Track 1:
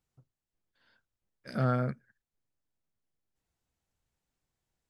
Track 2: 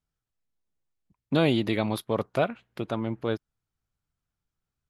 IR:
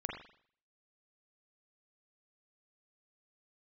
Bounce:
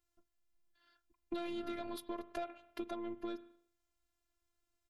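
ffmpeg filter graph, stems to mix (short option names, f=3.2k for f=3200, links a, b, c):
-filter_complex "[0:a]volume=1.5dB[a];[1:a]asoftclip=type=tanh:threshold=-18.5dB,volume=-1.5dB,asplit=3[b][c][d];[c]volume=-14.5dB[e];[d]apad=whole_len=220336[f];[a][f]sidechaincompress=threshold=-30dB:ratio=8:attack=16:release=1290[g];[2:a]atrim=start_sample=2205[h];[e][h]afir=irnorm=-1:irlink=0[i];[g][b][i]amix=inputs=3:normalize=0,afftfilt=real='hypot(re,im)*cos(PI*b)':imag='0':win_size=512:overlap=0.75,acompressor=threshold=-38dB:ratio=5"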